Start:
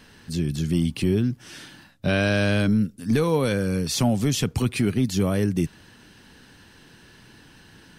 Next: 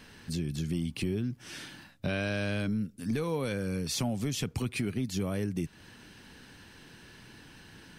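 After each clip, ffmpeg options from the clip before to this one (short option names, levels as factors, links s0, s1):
-af "equalizer=f=2300:w=5.1:g=3,acompressor=threshold=0.0316:ratio=2.5,volume=0.794"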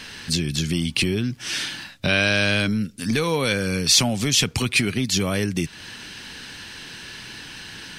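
-af "equalizer=f=4100:w=0.33:g=11.5,volume=2.37"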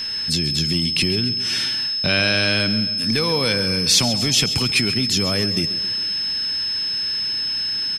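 -af "aeval=exprs='val(0)+0.0631*sin(2*PI*5200*n/s)':c=same,aecho=1:1:135|270|405|540|675|810:0.211|0.118|0.0663|0.0371|0.0208|0.0116"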